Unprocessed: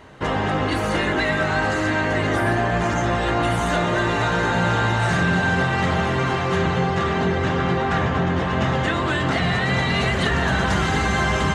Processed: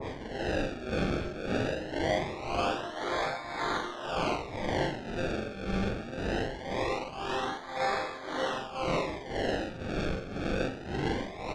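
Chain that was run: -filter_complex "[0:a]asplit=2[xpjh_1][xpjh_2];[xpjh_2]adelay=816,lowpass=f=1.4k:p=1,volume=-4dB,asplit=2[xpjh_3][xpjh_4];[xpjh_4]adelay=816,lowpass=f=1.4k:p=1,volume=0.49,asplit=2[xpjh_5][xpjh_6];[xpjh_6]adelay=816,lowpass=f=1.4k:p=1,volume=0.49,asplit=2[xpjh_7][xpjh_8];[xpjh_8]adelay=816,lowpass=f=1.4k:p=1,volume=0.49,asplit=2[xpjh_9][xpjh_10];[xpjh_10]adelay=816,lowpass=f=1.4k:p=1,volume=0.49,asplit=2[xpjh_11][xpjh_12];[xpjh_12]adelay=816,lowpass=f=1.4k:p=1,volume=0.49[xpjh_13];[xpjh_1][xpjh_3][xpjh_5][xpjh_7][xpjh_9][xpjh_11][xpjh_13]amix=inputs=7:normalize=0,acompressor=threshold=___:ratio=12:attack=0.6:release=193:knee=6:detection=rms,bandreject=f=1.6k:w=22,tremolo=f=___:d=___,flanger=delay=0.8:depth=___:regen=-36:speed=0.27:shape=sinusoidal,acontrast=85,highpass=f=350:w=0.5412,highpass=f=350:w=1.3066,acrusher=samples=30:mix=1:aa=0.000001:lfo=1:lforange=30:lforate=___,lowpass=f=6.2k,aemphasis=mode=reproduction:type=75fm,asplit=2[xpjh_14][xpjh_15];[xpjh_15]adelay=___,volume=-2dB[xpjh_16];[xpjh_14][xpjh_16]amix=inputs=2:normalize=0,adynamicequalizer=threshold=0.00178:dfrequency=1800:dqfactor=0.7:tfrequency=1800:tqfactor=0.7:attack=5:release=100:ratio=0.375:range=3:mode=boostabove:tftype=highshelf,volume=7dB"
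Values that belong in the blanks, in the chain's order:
-33dB, 1.9, 0.77, 5.5, 0.22, 42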